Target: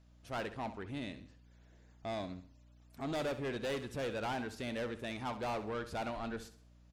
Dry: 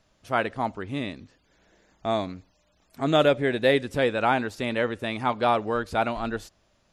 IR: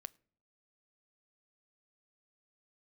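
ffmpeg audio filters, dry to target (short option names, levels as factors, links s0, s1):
-af "asoftclip=type=tanh:threshold=0.0531,aeval=exprs='val(0)+0.002*(sin(2*PI*60*n/s)+sin(2*PI*2*60*n/s)/2+sin(2*PI*3*60*n/s)/3+sin(2*PI*4*60*n/s)/4+sin(2*PI*5*60*n/s)/5)':c=same,aecho=1:1:66|132|198|264:0.237|0.0901|0.0342|0.013,volume=0.376"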